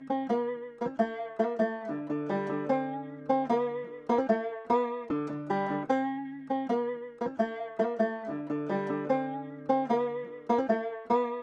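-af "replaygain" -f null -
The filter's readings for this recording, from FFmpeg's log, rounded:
track_gain = +9.4 dB
track_peak = 0.162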